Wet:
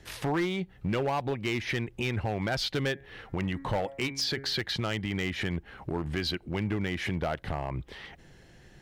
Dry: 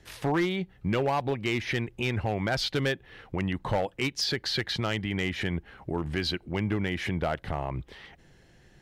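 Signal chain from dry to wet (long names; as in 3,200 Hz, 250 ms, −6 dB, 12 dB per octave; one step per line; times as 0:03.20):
0:02.92–0:04.61: hum removal 137.2 Hz, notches 17
in parallel at +2 dB: downward compressor 12 to 1, threshold −36 dBFS, peak gain reduction 13.5 dB
on the sum: hard clipping −19.5 dBFS, distortion −24 dB
level −4 dB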